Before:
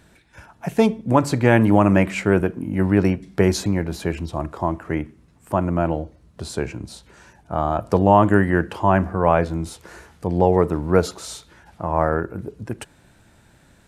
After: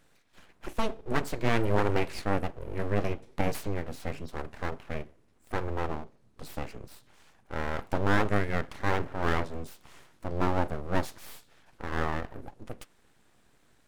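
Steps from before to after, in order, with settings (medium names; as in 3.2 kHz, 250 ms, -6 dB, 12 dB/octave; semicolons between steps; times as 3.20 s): flange 0.85 Hz, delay 1.5 ms, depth 8.2 ms, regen -81%; full-wave rectifier; trim -4.5 dB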